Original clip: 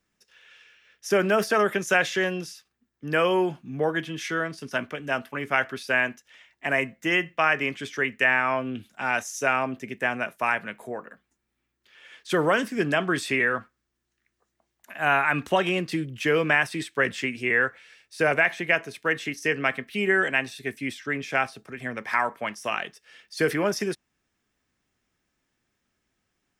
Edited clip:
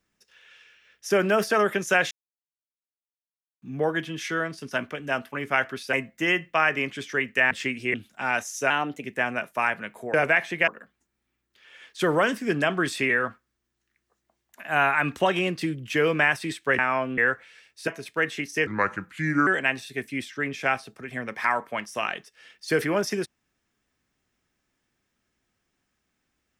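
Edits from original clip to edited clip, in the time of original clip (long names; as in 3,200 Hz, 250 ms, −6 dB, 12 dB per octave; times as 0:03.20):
0:02.11–0:03.62: silence
0:05.93–0:06.77: remove
0:08.35–0:08.74: swap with 0:17.09–0:17.52
0:09.50–0:09.88: play speed 113%
0:18.22–0:18.76: move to 0:10.98
0:19.55–0:20.16: play speed 76%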